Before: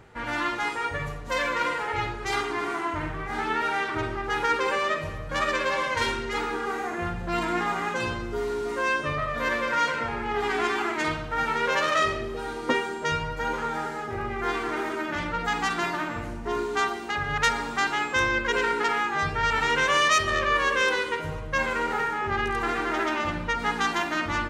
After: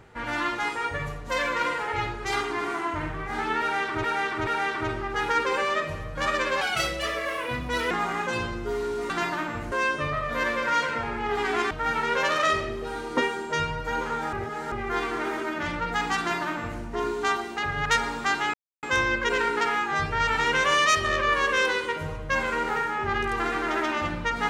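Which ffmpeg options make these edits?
-filter_complex "[0:a]asplit=11[s0][s1][s2][s3][s4][s5][s6][s7][s8][s9][s10];[s0]atrim=end=4.042[s11];[s1]atrim=start=3.608:end=4.042[s12];[s2]atrim=start=3.608:end=5.754[s13];[s3]atrim=start=5.75:end=7.58,asetpts=PTS-STARTPTS,asetrate=62181,aresample=44100,atrim=end_sample=57236,asetpts=PTS-STARTPTS[s14];[s4]atrim=start=7.576:end=8.772[s15];[s5]atrim=start=15.708:end=16.332[s16];[s6]atrim=start=8.768:end=10.762[s17];[s7]atrim=start=11.228:end=13.852[s18];[s8]atrim=start=13.848:end=14.242,asetpts=PTS-STARTPTS,areverse[s19];[s9]atrim=start=14.238:end=18.06,asetpts=PTS-STARTPTS,afade=t=out:st=3.818:d=0.004:c=hsin,apad=pad_dur=0.29[s20];[s10]atrim=start=18.06,asetpts=PTS-STARTPTS,afade=t=in:d=0.004:c=hsin[s21];[s11][s12]acrossfade=d=0.004:c1=hsin:c2=hsin[s22];[s22][s13]acrossfade=d=0.004:c1=hsin:c2=hsin[s23];[s23][s14]acrossfade=d=0.004:c1=hsin:c2=hsin[s24];[s24][s15]acrossfade=d=0.004:c1=hsin:c2=hsin[s25];[s25][s16]acrossfade=d=0.004:c1=hsin:c2=hsin[s26];[s26][s17]acrossfade=d=0.004:c1=hsin:c2=hsin[s27];[s27][s18]acrossfade=d=0.004:c1=hsin:c2=hsin[s28];[s28][s19]acrossfade=d=0.004:c1=hsin:c2=hsin[s29];[s20][s21]concat=n=2:v=0:a=1[s30];[s29][s30]acrossfade=d=0.004:c1=hsin:c2=hsin"

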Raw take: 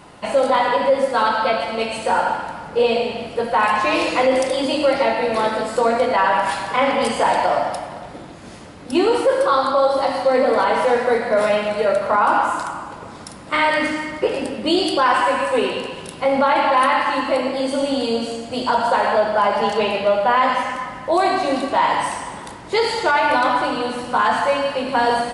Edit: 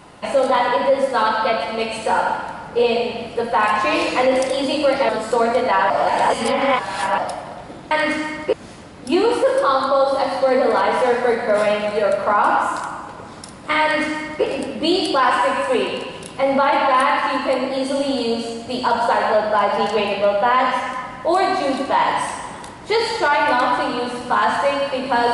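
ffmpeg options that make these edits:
-filter_complex "[0:a]asplit=6[s0][s1][s2][s3][s4][s5];[s0]atrim=end=5.092[s6];[s1]atrim=start=5.538:end=6.352[s7];[s2]atrim=start=6.348:end=7.632,asetpts=PTS-STARTPTS,areverse[s8];[s3]atrim=start=7.628:end=8.362[s9];[s4]atrim=start=13.648:end=14.272[s10];[s5]atrim=start=8.358[s11];[s6][s7]acrossfade=d=0.004:c1=hsin:c2=hsin[s12];[s12][s8]acrossfade=d=0.004:c1=hsin:c2=hsin[s13];[s13][s9]acrossfade=d=0.004:c1=hsin:c2=hsin[s14];[s14][s10]acrossfade=d=0.004:c1=hsin:c2=hsin[s15];[s15][s11]acrossfade=d=0.004:c1=hsin:c2=hsin"

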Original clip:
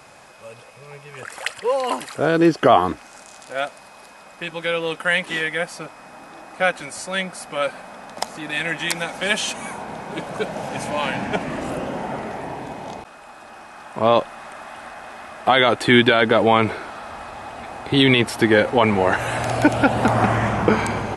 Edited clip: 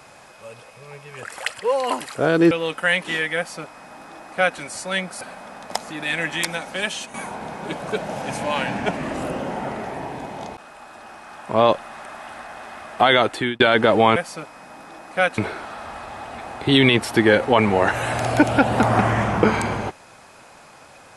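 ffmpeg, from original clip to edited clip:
-filter_complex "[0:a]asplit=7[s0][s1][s2][s3][s4][s5][s6];[s0]atrim=end=2.512[s7];[s1]atrim=start=4.728:end=7.432[s8];[s2]atrim=start=7.678:end=9.61,asetpts=PTS-STARTPTS,afade=t=out:st=1.132:d=0.8:silence=0.375837[s9];[s3]atrim=start=9.61:end=16.07,asetpts=PTS-STARTPTS,afade=t=in:d=0.004:c=hsin:silence=0.375837,afade=t=out:st=6.04:d=0.42[s10];[s4]atrim=start=16.07:end=16.632,asetpts=PTS-STARTPTS,afade=t=in:d=0.004:c=hsin[s11];[s5]atrim=start=5.588:end=6.812[s12];[s6]atrim=start=16.628[s13];[s7][s8]acrossfade=d=0.004:c1=hsin:c2=hsin[s14];[s9][s10][s11]concat=n=3:v=0:a=1[s15];[s14][s15]acrossfade=d=0.004:c1=hsin:c2=hsin[s16];[s16][s12]acrossfade=d=0.004:c1=hsin:c2=hsin[s17];[s17][s13]acrossfade=d=0.004:c1=hsin:c2=hsin"

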